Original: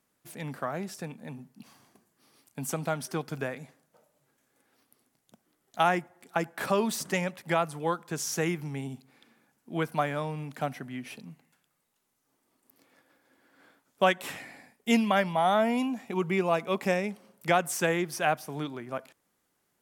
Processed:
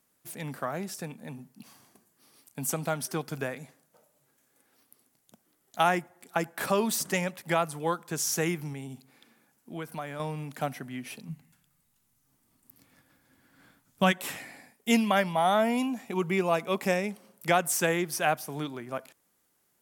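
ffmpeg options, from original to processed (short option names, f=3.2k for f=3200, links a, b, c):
-filter_complex "[0:a]asettb=1/sr,asplit=3[a][b][c];[a]atrim=end=8.734[d];[b]atrim=start=8.73:end=10.2,asetpts=PTS-STARTPTS,afade=t=in:d=0.004:c=qsin,afade=t=out:st=1.466:d=0.004:c=qsin,acompressor=threshold=-39dB:ratio=2:attack=3.2:release=140:knee=1:detection=peak[e];[c]atrim=start=10.196[f];[d][e]acrossfade=d=0.004:c1=hsin:c2=qsin[g];[g][f]acrossfade=d=0.004:c1=qsin:c2=hsin,asplit=3[h][i][j];[h]afade=t=out:st=11.28:d=0.02[k];[i]asubboost=boost=7.5:cutoff=150,afade=t=in:st=11.28:d=0.02,afade=t=out:st=14.11:d=0.02[l];[j]afade=t=in:st=14.11:d=0.02[m];[k][l][m]amix=inputs=3:normalize=0,highshelf=f=6.9k:g=8"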